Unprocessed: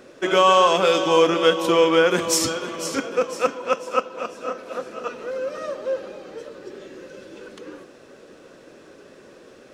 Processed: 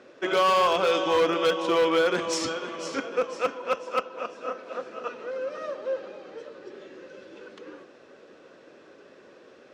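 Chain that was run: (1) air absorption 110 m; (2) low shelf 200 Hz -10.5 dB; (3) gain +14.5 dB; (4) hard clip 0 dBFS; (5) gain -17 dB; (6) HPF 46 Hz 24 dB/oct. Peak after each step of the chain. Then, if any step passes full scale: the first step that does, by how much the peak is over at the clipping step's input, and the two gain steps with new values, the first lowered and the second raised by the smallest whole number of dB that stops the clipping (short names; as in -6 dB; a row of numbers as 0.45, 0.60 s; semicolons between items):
-5.5, -5.5, +9.0, 0.0, -17.0, -14.5 dBFS; step 3, 9.0 dB; step 3 +5.5 dB, step 5 -8 dB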